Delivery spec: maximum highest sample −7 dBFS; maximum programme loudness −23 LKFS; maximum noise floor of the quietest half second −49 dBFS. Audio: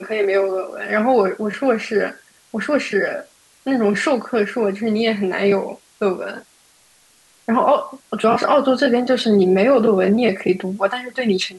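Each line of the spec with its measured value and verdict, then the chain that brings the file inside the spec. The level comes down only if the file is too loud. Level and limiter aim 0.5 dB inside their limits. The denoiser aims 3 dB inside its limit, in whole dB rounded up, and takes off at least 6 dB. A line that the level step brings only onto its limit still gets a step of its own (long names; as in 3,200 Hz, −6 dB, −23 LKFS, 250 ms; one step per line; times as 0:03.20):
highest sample −5.0 dBFS: out of spec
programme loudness −18.5 LKFS: out of spec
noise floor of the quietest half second −54 dBFS: in spec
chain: level −5 dB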